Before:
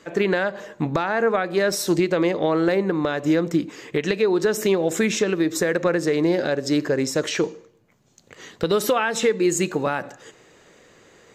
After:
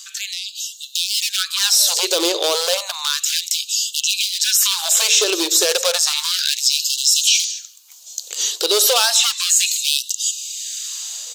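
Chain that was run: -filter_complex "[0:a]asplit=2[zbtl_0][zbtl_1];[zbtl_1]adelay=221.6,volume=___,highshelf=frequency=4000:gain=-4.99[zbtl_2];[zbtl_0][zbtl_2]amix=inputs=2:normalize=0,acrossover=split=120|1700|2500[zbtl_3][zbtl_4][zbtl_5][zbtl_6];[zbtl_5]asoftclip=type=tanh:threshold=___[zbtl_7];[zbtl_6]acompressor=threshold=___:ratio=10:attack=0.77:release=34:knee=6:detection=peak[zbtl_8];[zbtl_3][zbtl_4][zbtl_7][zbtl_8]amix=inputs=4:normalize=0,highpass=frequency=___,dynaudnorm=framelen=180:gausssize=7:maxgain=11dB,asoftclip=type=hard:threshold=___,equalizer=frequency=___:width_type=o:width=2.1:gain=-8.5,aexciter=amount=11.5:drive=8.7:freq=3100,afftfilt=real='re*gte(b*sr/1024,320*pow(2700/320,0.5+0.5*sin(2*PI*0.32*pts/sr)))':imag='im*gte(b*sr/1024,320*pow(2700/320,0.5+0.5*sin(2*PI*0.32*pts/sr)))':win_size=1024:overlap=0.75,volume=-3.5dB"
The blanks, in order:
-28dB, -32.5dB, -43dB, 54, -11dB, 82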